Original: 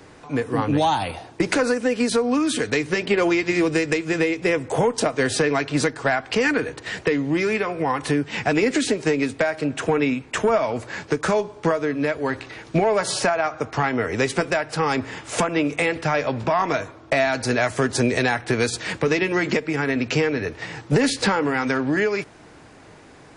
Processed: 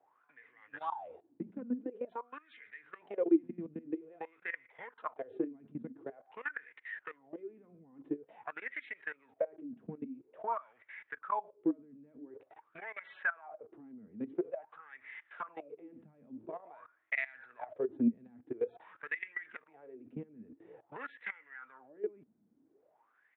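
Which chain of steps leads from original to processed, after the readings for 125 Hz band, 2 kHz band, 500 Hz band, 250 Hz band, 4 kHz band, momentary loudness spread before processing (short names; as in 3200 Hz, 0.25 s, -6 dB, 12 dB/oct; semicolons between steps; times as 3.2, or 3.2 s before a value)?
-29.0 dB, -18.0 dB, -20.5 dB, -16.5 dB, under -35 dB, 5 LU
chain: downsampling 8000 Hz; level quantiser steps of 19 dB; wah 0.48 Hz 210–2100 Hz, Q 11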